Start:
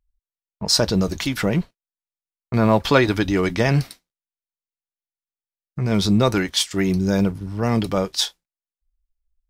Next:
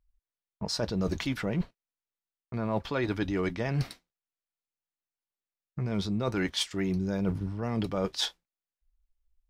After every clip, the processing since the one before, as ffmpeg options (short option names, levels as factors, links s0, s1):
-af "highshelf=f=5500:g=-11.5,areverse,acompressor=threshold=0.0501:ratio=12,areverse"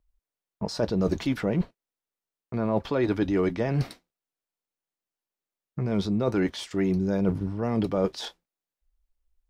-filter_complex "[0:a]equalizer=f=400:w=0.44:g=6.5,acrossover=split=760[s0][s1];[s1]alimiter=level_in=1.41:limit=0.0631:level=0:latency=1:release=17,volume=0.708[s2];[s0][s2]amix=inputs=2:normalize=0"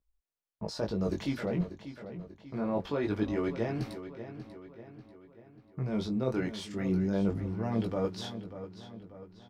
-filter_complex "[0:a]flanger=delay=16.5:depth=6.8:speed=0.24,asplit=2[s0][s1];[s1]adelay=590,lowpass=f=5000:p=1,volume=0.266,asplit=2[s2][s3];[s3]adelay=590,lowpass=f=5000:p=1,volume=0.5,asplit=2[s4][s5];[s5]adelay=590,lowpass=f=5000:p=1,volume=0.5,asplit=2[s6][s7];[s7]adelay=590,lowpass=f=5000:p=1,volume=0.5,asplit=2[s8][s9];[s9]adelay=590,lowpass=f=5000:p=1,volume=0.5[s10];[s2][s4][s6][s8][s10]amix=inputs=5:normalize=0[s11];[s0][s11]amix=inputs=2:normalize=0,volume=0.708"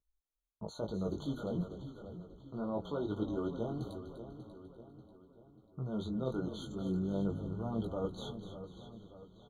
-filter_complex "[0:a]asplit=6[s0][s1][s2][s3][s4][s5];[s1]adelay=248,afreqshift=-43,volume=0.266[s6];[s2]adelay=496,afreqshift=-86,volume=0.124[s7];[s3]adelay=744,afreqshift=-129,volume=0.0589[s8];[s4]adelay=992,afreqshift=-172,volume=0.0275[s9];[s5]adelay=1240,afreqshift=-215,volume=0.013[s10];[s0][s6][s7][s8][s9][s10]amix=inputs=6:normalize=0,afftfilt=real='re*eq(mod(floor(b*sr/1024/1500),2),0)':imag='im*eq(mod(floor(b*sr/1024/1500),2),0)':win_size=1024:overlap=0.75,volume=0.531"